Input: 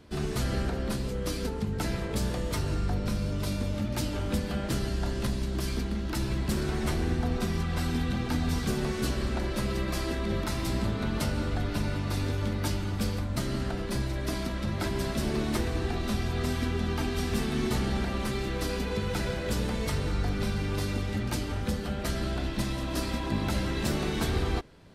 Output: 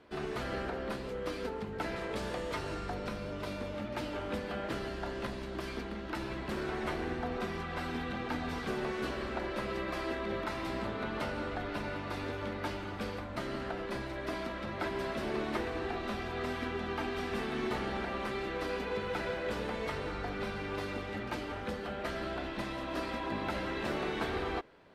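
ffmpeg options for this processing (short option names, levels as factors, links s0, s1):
-filter_complex "[0:a]asettb=1/sr,asplit=3[s0][s1][s2];[s0]atrim=end=1.964[s3];[s1]atrim=start=1.96:end=3.09,asetpts=PTS-STARTPTS,afade=t=in:d=0.004:c=qsin,afade=t=out:st=1.126:d=0.004:c=qsin,equalizer=f=8200:w=0.52:g=7[s4];[s2]atrim=start=3.086[s5];[s3][s4]acrossfade=d=0.004:c1=hsin:c2=qsin[s6];[s6][s5]acrossfade=d=0.004:c1=qsin:c2=hsin,bass=f=250:g=-15,treble=f=4000:g=-15,acrossover=split=4200[s7][s8];[s8]acompressor=threshold=0.00282:ratio=4:attack=1:release=60[s9];[s7][s9]amix=inputs=2:normalize=0"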